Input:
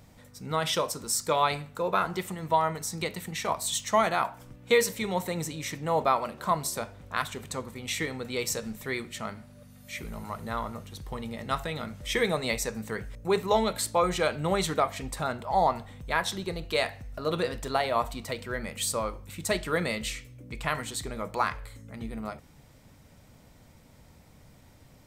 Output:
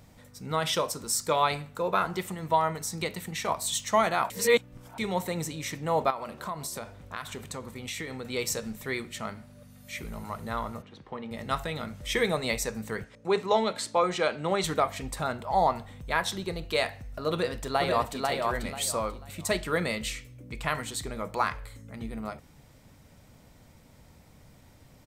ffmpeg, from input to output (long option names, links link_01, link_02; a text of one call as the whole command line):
ffmpeg -i in.wav -filter_complex "[0:a]asettb=1/sr,asplit=3[link_01][link_02][link_03];[link_01]atrim=end=6.104[link_04];[link_02]atrim=start=6.1:end=8.27,asetpts=PTS-STARTPTS,afade=type=in:duration=0.004:curve=qsin,afade=type=out:start_time=2.166:duration=0.004:curve=qsin,acompressor=threshold=-33dB:ratio=3:attack=3.2:release=140:knee=1:detection=peak[link_05];[link_03]atrim=start=8.266[link_06];[link_04][link_05]acrossfade=duration=0.004:curve1=hsin:curve2=qsin[link_07];[link_07][link_06]acrossfade=duration=0.004:curve1=qsin:curve2=hsin,asplit=3[link_08][link_09][link_10];[link_08]afade=type=out:start_time=10.81:duration=0.02[link_11];[link_09]highpass=190,lowpass=2600,afade=type=in:start_time=10.81:duration=0.02,afade=type=out:start_time=11.3:duration=0.02[link_12];[link_10]afade=type=in:start_time=11.3:duration=0.02[link_13];[link_11][link_12][link_13]amix=inputs=3:normalize=0,asettb=1/sr,asplit=3[link_14][link_15][link_16];[link_14]atrim=end=13.044[link_17];[link_15]atrim=start=13.04:end=14.64,asetpts=PTS-STARTPTS,afade=type=in:duration=0.004:curve=qsin,afade=type=out:start_time=1.596:duration=0.004:curve=qsin,highpass=190,lowpass=6700[link_18];[link_16]atrim=start=14.636[link_19];[link_17][link_18]acrossfade=duration=0.004:curve1=hsin:curve2=qsin[link_20];[link_20][link_19]acrossfade=duration=0.004:curve1=qsin:curve2=hsin,asplit=2[link_21][link_22];[link_22]afade=type=in:start_time=17.31:duration=0.01,afade=type=out:start_time=18.24:duration=0.01,aecho=0:1:490|980|1470|1960:0.749894|0.187474|0.0468684|0.0117171[link_23];[link_21][link_23]amix=inputs=2:normalize=0,asplit=3[link_24][link_25][link_26];[link_24]atrim=end=4.302[link_27];[link_25]atrim=start=4.298:end=4.982,asetpts=PTS-STARTPTS,areverse[link_28];[link_26]atrim=start=4.978[link_29];[link_27][link_28]acrossfade=duration=0.004:curve1=hsin:curve2=hsin[link_30];[link_30][link_29]acrossfade=duration=0.004:curve1=hsin:curve2=hsin" out.wav